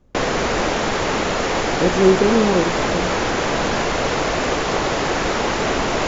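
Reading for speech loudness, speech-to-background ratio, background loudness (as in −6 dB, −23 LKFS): −19.5 LKFS, 0.5 dB, −20.0 LKFS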